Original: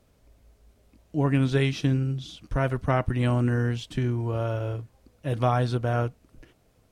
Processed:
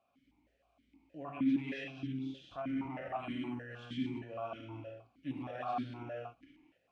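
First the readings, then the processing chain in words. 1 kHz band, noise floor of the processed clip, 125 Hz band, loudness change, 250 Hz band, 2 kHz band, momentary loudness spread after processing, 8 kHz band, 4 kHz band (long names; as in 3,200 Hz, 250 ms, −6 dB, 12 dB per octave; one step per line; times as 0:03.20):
−11.0 dB, −76 dBFS, −23.5 dB, −13.0 dB, −8.5 dB, −13.0 dB, 13 LU, can't be measured, −13.0 dB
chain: reverb whose tail is shaped and stops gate 280 ms flat, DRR −2 dB
brickwall limiter −19.5 dBFS, peak gain reduction 12 dB
parametric band 460 Hz −12 dB 0.64 octaves
formant filter that steps through the vowels 6.4 Hz
level +2.5 dB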